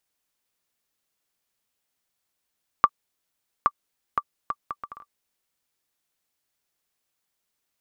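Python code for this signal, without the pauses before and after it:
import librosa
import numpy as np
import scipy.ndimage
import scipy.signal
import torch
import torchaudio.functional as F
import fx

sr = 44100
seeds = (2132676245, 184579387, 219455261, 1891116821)

y = fx.bouncing_ball(sr, first_gap_s=0.82, ratio=0.63, hz=1170.0, decay_ms=52.0, level_db=-3.5)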